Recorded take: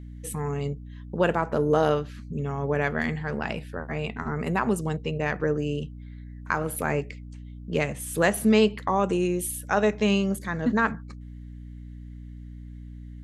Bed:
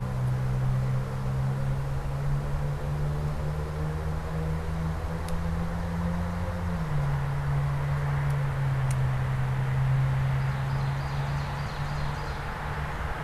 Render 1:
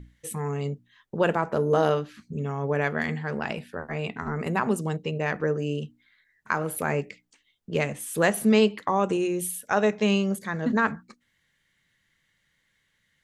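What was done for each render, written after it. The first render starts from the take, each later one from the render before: hum notches 60/120/180/240/300 Hz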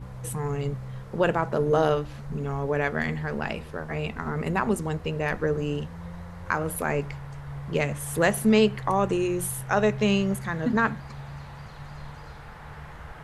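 add bed -10 dB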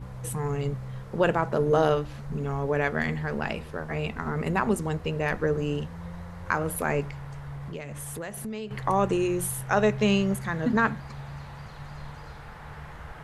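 7.09–8.71 s: compression, threshold -33 dBFS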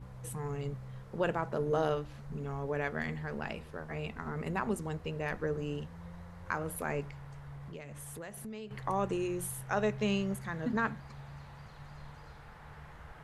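trim -8.5 dB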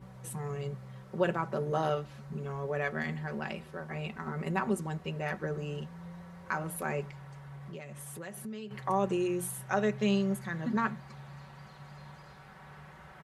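high-pass 93 Hz 12 dB/octave; comb 5.3 ms, depth 65%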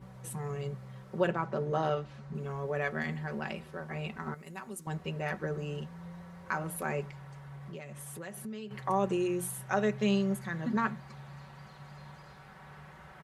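1.27–2.35 s: distance through air 58 m; 4.34–4.87 s: pre-emphasis filter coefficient 0.8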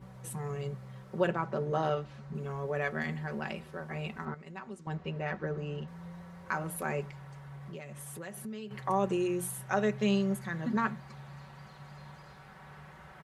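4.25–5.88 s: distance through air 120 m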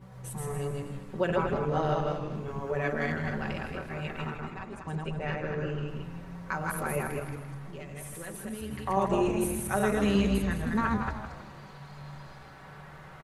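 backward echo that repeats 118 ms, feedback 42%, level -1.5 dB; on a send: frequency-shifting echo 160 ms, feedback 43%, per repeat -140 Hz, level -8 dB

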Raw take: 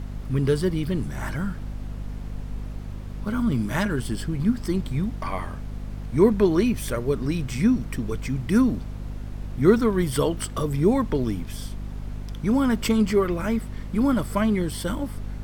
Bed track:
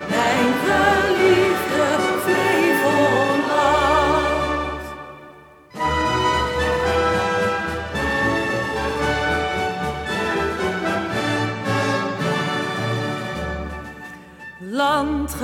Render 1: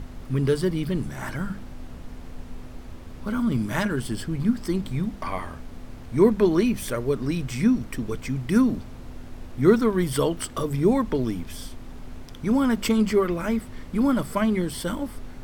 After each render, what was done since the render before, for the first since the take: hum notches 50/100/150/200 Hz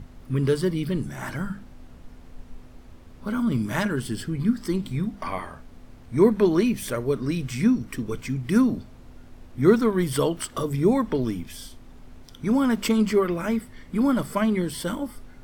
noise print and reduce 7 dB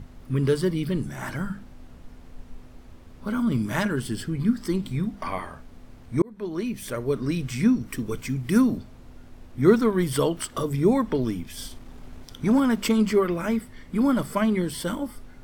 6.22–7.20 s: fade in; 7.85–8.78 s: treble shelf 8.4 kHz +6.5 dB; 11.57–12.60 s: waveshaping leveller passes 1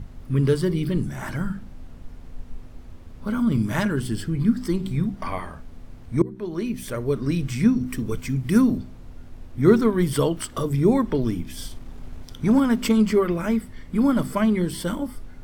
bass shelf 200 Hz +6.5 dB; de-hum 63.23 Hz, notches 6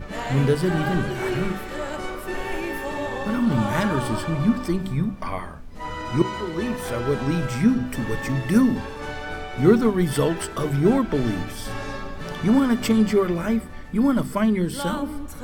add bed track -12 dB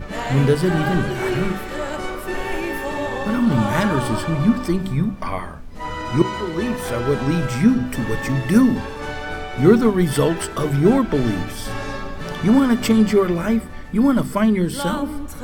trim +3.5 dB; peak limiter -1 dBFS, peak gain reduction 1 dB

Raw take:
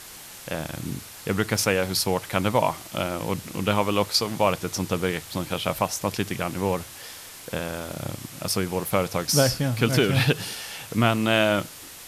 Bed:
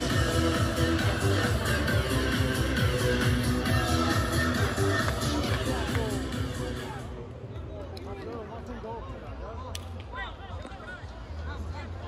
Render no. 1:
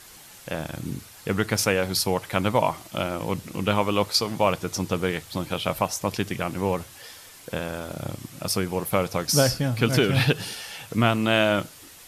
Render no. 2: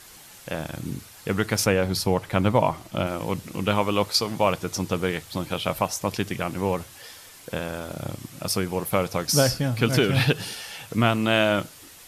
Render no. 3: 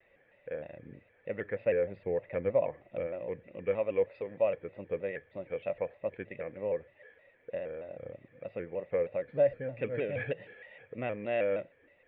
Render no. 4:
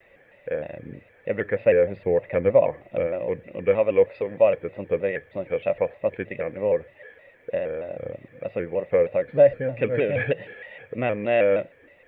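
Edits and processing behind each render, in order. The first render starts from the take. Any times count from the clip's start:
noise reduction 6 dB, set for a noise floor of -43 dBFS
1.66–3.07 s: tilt EQ -1.5 dB/octave
cascade formant filter e; vibrato with a chosen wave square 3.2 Hz, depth 100 cents
trim +10.5 dB

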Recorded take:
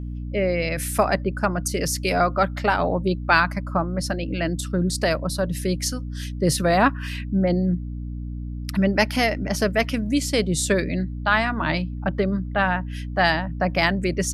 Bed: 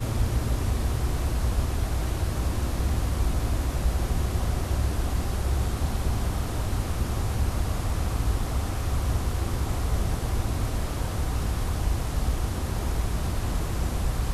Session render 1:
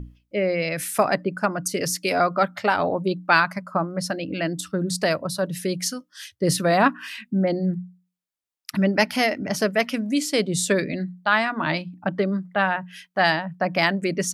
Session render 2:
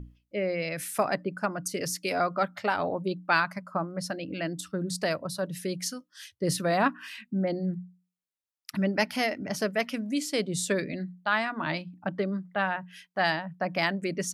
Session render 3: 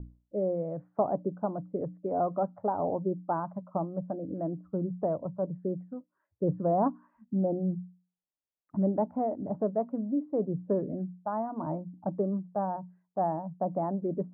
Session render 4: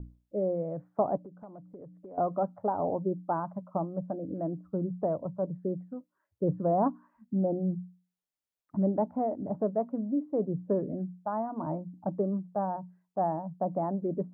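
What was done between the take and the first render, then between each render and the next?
hum notches 60/120/180/240/300 Hz
trim -6.5 dB
steep low-pass 940 Hz 36 dB/octave
1.17–2.18 s: compression 3:1, threshold -48 dBFS

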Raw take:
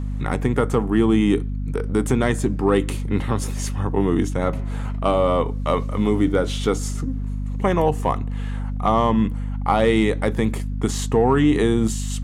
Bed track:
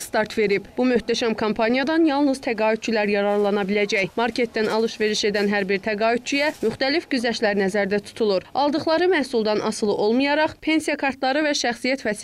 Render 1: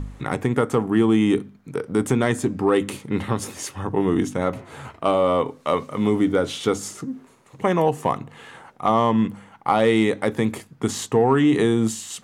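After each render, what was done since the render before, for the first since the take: de-hum 50 Hz, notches 5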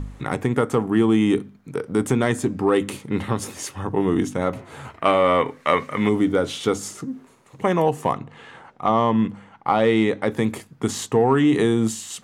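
4.97–6.09 s: peaking EQ 1.9 kHz +13.5 dB 0.93 oct; 8.14–10.30 s: distance through air 69 m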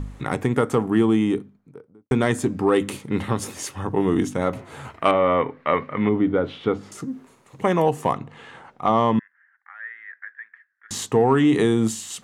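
0.86–2.11 s: studio fade out; 5.11–6.92 s: distance through air 390 m; 9.19–10.91 s: Butterworth band-pass 1.7 kHz, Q 5.4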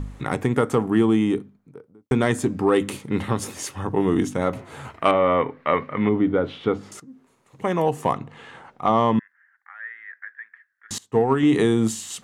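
7.00–8.09 s: fade in, from -18 dB; 10.98–11.43 s: upward expansion 2.5:1, over -30 dBFS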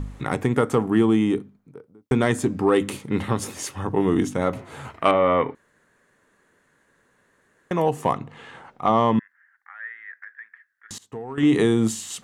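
5.55–7.71 s: room tone; 10.17–11.38 s: compression 3:1, threshold -35 dBFS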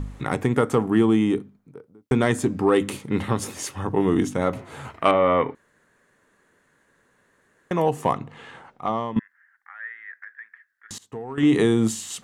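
8.50–9.16 s: fade out, to -14.5 dB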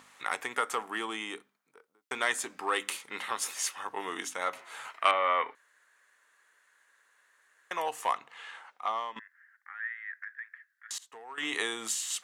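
high-pass 1.2 kHz 12 dB/octave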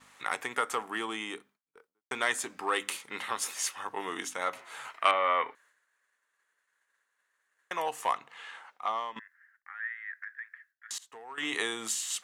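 expander -58 dBFS; bass shelf 140 Hz +8 dB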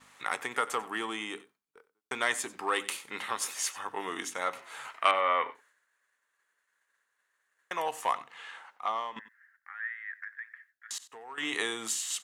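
delay 93 ms -18.5 dB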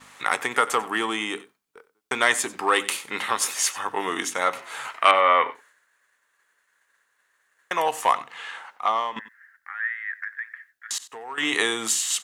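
trim +9 dB; peak limiter -2 dBFS, peak gain reduction 2.5 dB

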